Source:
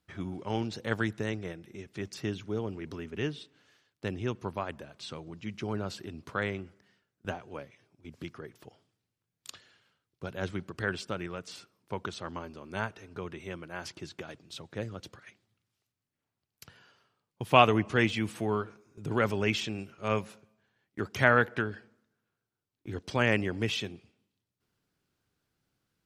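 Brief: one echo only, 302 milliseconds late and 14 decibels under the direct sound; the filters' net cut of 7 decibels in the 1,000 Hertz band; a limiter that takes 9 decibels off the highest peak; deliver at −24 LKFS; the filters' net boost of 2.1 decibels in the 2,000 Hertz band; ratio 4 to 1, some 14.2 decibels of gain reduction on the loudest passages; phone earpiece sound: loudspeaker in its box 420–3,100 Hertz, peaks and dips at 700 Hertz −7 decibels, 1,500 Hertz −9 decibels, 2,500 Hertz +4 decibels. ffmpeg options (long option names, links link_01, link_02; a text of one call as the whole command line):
ffmpeg -i in.wav -af "equalizer=frequency=1000:width_type=o:gain=-6.5,equalizer=frequency=2000:width_type=o:gain=7,acompressor=threshold=-32dB:ratio=4,alimiter=level_in=1dB:limit=-24dB:level=0:latency=1,volume=-1dB,highpass=420,equalizer=frequency=700:width_type=q:width=4:gain=-7,equalizer=frequency=1500:width_type=q:width=4:gain=-9,equalizer=frequency=2500:width_type=q:width=4:gain=4,lowpass=frequency=3100:width=0.5412,lowpass=frequency=3100:width=1.3066,aecho=1:1:302:0.2,volume=20dB" out.wav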